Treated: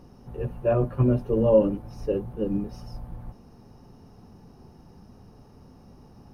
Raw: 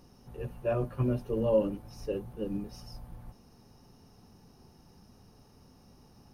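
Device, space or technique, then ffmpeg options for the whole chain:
through cloth: -af "highshelf=frequency=2200:gain=-11.5,volume=8dB"

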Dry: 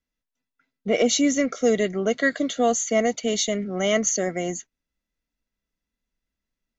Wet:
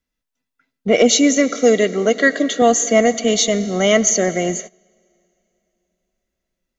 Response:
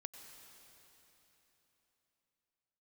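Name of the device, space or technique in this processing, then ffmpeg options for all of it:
keyed gated reverb: -filter_complex "[0:a]asettb=1/sr,asplit=3[link_01][link_02][link_03];[link_01]atrim=end=1.124[link_04];[link_02]atrim=start=1.12:end=2.62,asetpts=PTS-STARTPTS,afade=type=in:duration=0.004:curve=qsin,afade=type=out:start_time=1.496:duration=0.004:curve=qsin,highpass=210[link_05];[link_03]atrim=start=2.616[link_06];[link_04][link_05]acrossfade=duration=0.004:curve1=hsin:curve2=qsin[link_07];[link_07][link_06]acrossfade=duration=0.004:curve1=qsin:curve2=hsin,asplit=3[link_08][link_09][link_10];[1:a]atrim=start_sample=2205[link_11];[link_09][link_11]afir=irnorm=-1:irlink=0[link_12];[link_10]apad=whole_len=299000[link_13];[link_12][link_13]sidechaingate=range=-21dB:threshold=-41dB:ratio=16:detection=peak,volume=-1dB[link_14];[link_08][link_14]amix=inputs=2:normalize=0,volume=4dB"

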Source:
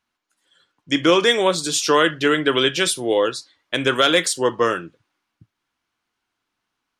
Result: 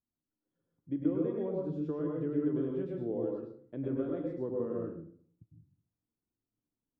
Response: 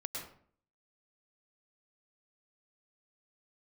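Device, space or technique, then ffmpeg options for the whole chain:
television next door: -filter_complex "[0:a]acompressor=threshold=-18dB:ratio=6,lowpass=310[link_01];[1:a]atrim=start_sample=2205[link_02];[link_01][link_02]afir=irnorm=-1:irlink=0,volume=-4dB"

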